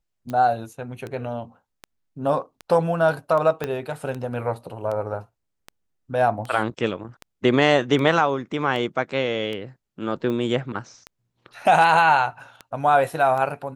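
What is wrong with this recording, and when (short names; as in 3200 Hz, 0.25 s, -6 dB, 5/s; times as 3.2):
tick 78 rpm -19 dBFS
3.64 pop -12 dBFS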